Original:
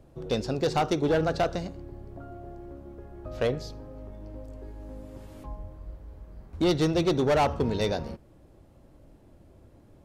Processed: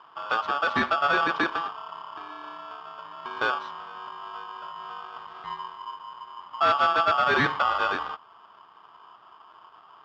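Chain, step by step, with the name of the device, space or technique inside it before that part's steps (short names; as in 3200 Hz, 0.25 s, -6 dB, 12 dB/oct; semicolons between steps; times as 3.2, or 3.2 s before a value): ring modulator pedal into a guitar cabinet (polarity switched at an audio rate 1000 Hz; speaker cabinet 81–3700 Hz, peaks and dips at 510 Hz -6 dB, 1200 Hz +8 dB, 2700 Hz -4 dB)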